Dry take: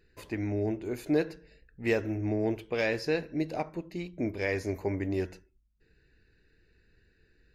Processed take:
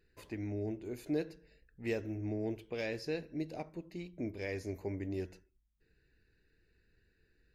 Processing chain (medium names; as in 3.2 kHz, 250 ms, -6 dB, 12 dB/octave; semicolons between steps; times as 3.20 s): dynamic bell 1.2 kHz, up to -7 dB, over -46 dBFS, Q 0.79; trim -6.5 dB